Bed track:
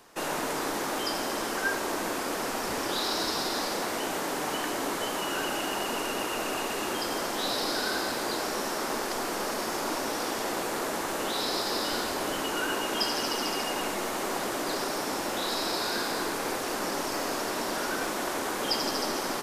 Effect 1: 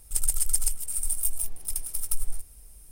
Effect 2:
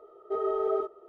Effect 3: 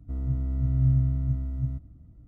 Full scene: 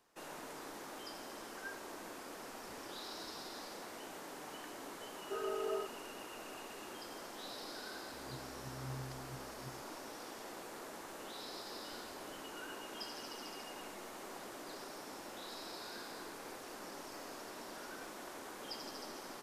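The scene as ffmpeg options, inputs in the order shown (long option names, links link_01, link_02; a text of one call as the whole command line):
ffmpeg -i bed.wav -i cue0.wav -i cue1.wav -i cue2.wav -filter_complex "[0:a]volume=-17.5dB[link_01];[3:a]highpass=190[link_02];[2:a]atrim=end=1.08,asetpts=PTS-STARTPTS,volume=-10.5dB,afade=type=in:duration=0.004:curve=hsin,afade=type=out:start_time=1.076:duration=0.004:curve=hsin,adelay=5000[link_03];[link_02]atrim=end=2.27,asetpts=PTS-STARTPTS,volume=-15.5dB,afade=type=in:duration=0.004:curve=hsin,afade=type=out:start_time=2.266:duration=0.004:curve=hsin,adelay=8030[link_04];[link_01][link_03][link_04]amix=inputs=3:normalize=0" out.wav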